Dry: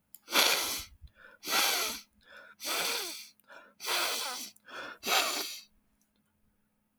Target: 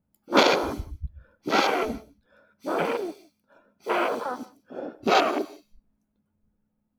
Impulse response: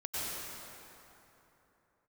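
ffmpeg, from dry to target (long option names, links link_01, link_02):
-filter_complex "[0:a]tiltshelf=frequency=1100:gain=9.5,afwtdn=0.0141,asplit=2[link_01][link_02];[1:a]atrim=start_sample=2205,afade=type=out:start_time=0.23:duration=0.01,atrim=end_sample=10584,highshelf=frequency=11000:gain=10[link_03];[link_02][link_03]afir=irnorm=-1:irlink=0,volume=-18.5dB[link_04];[link_01][link_04]amix=inputs=2:normalize=0,volume=9dB"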